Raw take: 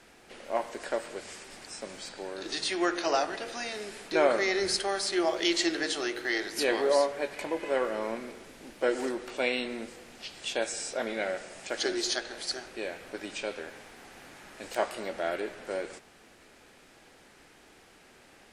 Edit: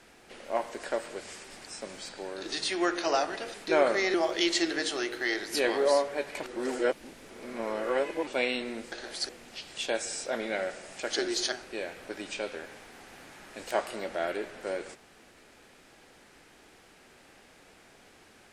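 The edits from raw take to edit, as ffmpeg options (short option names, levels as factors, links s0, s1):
-filter_complex "[0:a]asplit=8[s0][s1][s2][s3][s4][s5][s6][s7];[s0]atrim=end=3.542[s8];[s1]atrim=start=3.978:end=4.582[s9];[s2]atrim=start=5.178:end=7.472[s10];[s3]atrim=start=7.468:end=9.312,asetpts=PTS-STARTPTS,areverse[s11];[s4]atrim=start=9.308:end=9.962[s12];[s5]atrim=start=12.188:end=12.562[s13];[s6]atrim=start=9.958:end=12.192[s14];[s7]atrim=start=12.558[s15];[s8][s9]acrossfade=d=0.004:c1=hsin:c2=hsin[s16];[s16][s10]acrossfade=d=0.004:c1=hsin:c2=hsin[s17];[s17][s11]acrossfade=d=0.004:c1=hsin:c2=hsin[s18];[s18][s12]acrossfade=d=0.004:c1=hsin:c2=hsin[s19];[s19][s13]acrossfade=d=0.004:c1=hsin:c2=hsin[s20];[s20][s14]acrossfade=d=0.004:c1=hsin:c2=hsin[s21];[s21][s15]acrossfade=d=0.004:c1=hsin:c2=hsin"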